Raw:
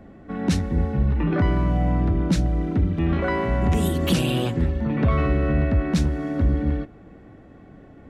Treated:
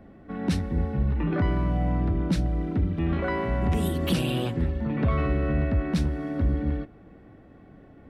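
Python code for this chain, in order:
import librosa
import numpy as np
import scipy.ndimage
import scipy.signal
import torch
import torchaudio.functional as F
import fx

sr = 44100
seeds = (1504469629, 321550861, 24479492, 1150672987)

y = fx.peak_eq(x, sr, hz=6800.0, db=-7.0, octaves=0.4)
y = y * 10.0 ** (-4.0 / 20.0)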